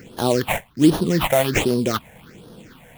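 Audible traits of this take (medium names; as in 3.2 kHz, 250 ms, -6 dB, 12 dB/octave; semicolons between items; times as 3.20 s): aliases and images of a low sample rate 4.9 kHz, jitter 20%; phasing stages 6, 1.3 Hz, lowest notch 320–2200 Hz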